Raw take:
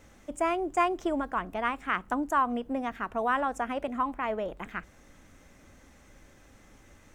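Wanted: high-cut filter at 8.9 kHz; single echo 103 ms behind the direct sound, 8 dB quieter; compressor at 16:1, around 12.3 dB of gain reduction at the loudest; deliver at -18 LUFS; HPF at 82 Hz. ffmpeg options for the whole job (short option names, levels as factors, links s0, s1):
-af "highpass=82,lowpass=8900,acompressor=threshold=0.0251:ratio=16,aecho=1:1:103:0.398,volume=8.91"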